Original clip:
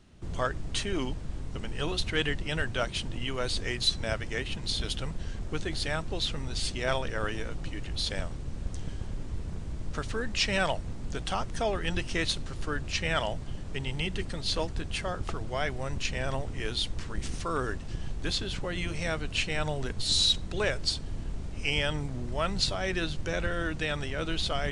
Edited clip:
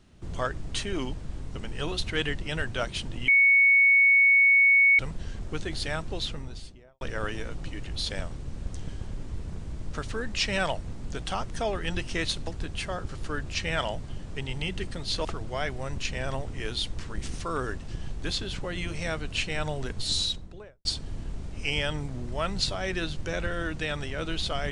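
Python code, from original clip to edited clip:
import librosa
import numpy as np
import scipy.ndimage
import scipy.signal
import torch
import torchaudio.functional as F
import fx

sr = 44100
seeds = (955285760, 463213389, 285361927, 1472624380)

y = fx.studio_fade_out(x, sr, start_s=6.11, length_s=0.9)
y = fx.studio_fade_out(y, sr, start_s=20.02, length_s=0.83)
y = fx.edit(y, sr, fx.bleep(start_s=3.28, length_s=1.71, hz=2220.0, db=-15.5),
    fx.move(start_s=14.63, length_s=0.62, to_s=12.47), tone=tone)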